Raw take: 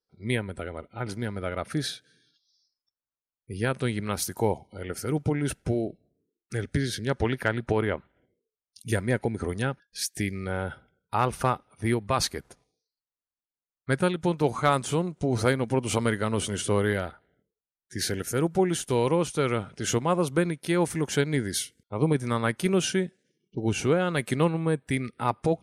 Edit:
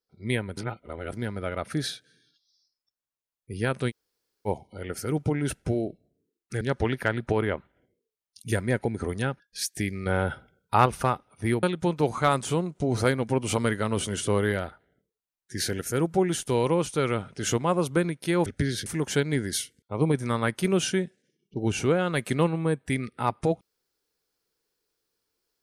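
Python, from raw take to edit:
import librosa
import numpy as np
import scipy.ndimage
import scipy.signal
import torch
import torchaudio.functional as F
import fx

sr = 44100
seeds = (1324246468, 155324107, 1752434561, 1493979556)

y = fx.edit(x, sr, fx.reverse_span(start_s=0.57, length_s=0.56),
    fx.room_tone_fill(start_s=3.9, length_s=0.57, crossfade_s=0.04),
    fx.move(start_s=6.61, length_s=0.4, to_s=20.87),
    fx.clip_gain(start_s=10.46, length_s=0.8, db=5.0),
    fx.cut(start_s=12.03, length_s=2.01), tone=tone)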